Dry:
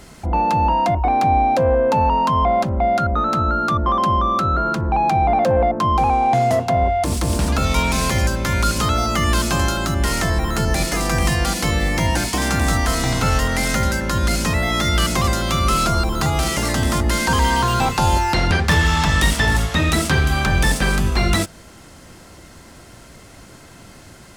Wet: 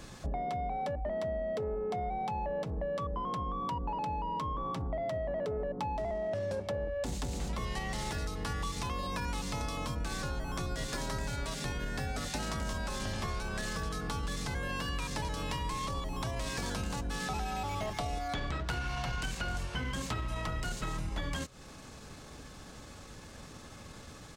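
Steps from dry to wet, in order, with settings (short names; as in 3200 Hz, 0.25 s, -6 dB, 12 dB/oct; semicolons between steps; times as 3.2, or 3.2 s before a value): compressor, threshold -27 dBFS, peak gain reduction 14.5 dB; pitch shift -3.5 st; gain -6 dB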